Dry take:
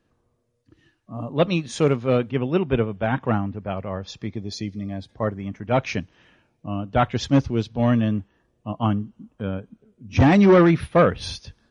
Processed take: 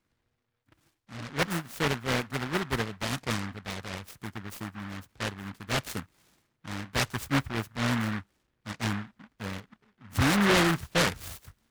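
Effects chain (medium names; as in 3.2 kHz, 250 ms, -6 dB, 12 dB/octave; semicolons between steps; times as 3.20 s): delay time shaken by noise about 1.3 kHz, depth 0.36 ms; trim -9 dB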